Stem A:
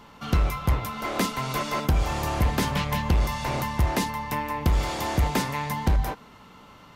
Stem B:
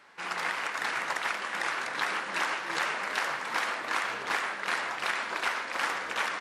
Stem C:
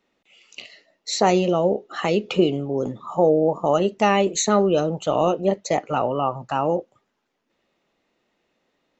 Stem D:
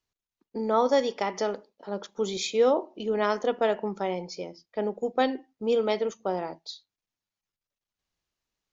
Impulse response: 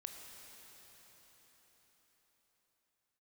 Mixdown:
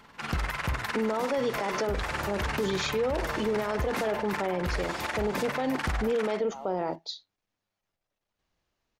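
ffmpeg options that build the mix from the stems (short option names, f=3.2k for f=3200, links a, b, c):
-filter_complex "[0:a]volume=-7dB[a];[1:a]tremolo=f=20:d=0.889,volume=3dB[b];[2:a]bandpass=f=710:t=q:w=2:csg=0,volume=-17dB[c];[3:a]highshelf=f=3.9k:g=-11.5,acontrast=69,alimiter=limit=-15.5dB:level=0:latency=1:release=36,adelay=400,volume=2dB[d];[a][b][c][d]amix=inputs=4:normalize=0,alimiter=limit=-20.5dB:level=0:latency=1:release=61"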